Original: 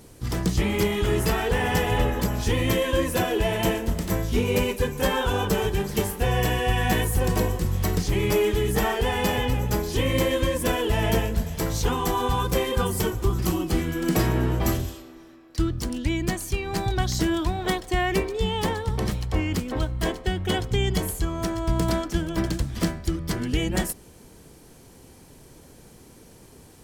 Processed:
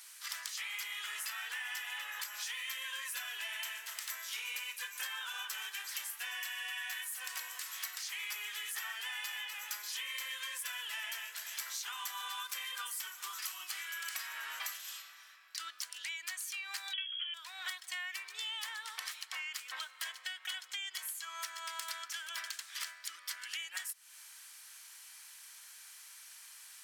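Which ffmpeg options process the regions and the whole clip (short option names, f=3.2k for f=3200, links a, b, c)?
-filter_complex "[0:a]asettb=1/sr,asplit=3[a][b][c];[a]atrim=end=16.934[d];[b]atrim=start=16.93:end=17.34,asetpts=PTS-STARTPTS,afade=t=in:d=0.004:c=qsin,afade=t=out:st=0.406:d=0.004:c=qsin,aecho=1:1:7:0.54,atrim=end_sample=18081,lowpass=f=2.9k:t=q:w=0.5098,lowpass=f=2.9k:t=q:w=0.6013,lowpass=f=2.9k:t=q:w=0.9,lowpass=f=2.9k:t=q:w=2.563,afreqshift=-3400[e];[c]atrim=start=17.336[f];[d][e]acrossfade=d=0.004:c1=hsin:c2=qsin[g];[g][f]acrossfade=d=0.004:c1=qsin:c2=hsin,highpass=f=1.4k:w=0.5412,highpass=f=1.4k:w=1.3066,acompressor=threshold=-41dB:ratio=10,volume=3dB"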